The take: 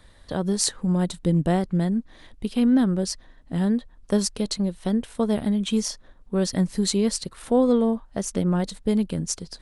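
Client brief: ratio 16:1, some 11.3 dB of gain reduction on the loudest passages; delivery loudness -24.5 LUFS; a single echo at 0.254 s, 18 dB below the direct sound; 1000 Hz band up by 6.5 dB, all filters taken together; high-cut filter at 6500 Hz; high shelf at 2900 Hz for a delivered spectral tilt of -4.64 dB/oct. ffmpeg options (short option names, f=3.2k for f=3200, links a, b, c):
-af "lowpass=6.5k,equalizer=f=1k:t=o:g=8.5,highshelf=f=2.9k:g=6,acompressor=threshold=-25dB:ratio=16,aecho=1:1:254:0.126,volume=6.5dB"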